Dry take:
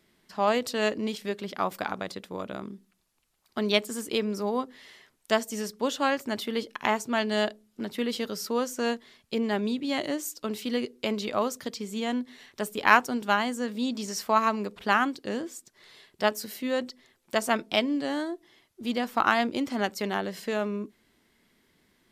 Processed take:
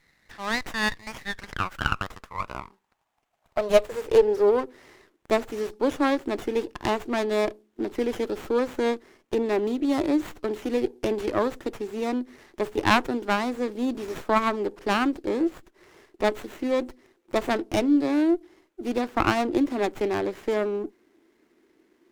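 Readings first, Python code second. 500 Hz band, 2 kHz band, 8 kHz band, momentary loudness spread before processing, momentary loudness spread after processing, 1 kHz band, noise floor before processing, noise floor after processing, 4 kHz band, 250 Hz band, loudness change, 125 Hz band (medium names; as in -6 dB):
+5.0 dB, -1.0 dB, -5.0 dB, 12 LU, 11 LU, -0.5 dB, -71 dBFS, -69 dBFS, -2.5 dB, +3.5 dB, +2.5 dB, +3.0 dB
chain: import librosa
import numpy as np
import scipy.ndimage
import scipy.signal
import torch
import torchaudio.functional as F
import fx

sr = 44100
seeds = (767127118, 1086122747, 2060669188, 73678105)

y = fx.filter_sweep_highpass(x, sr, from_hz=1900.0, to_hz=330.0, start_s=1.18, end_s=4.89, q=5.0)
y = fx.running_max(y, sr, window=9)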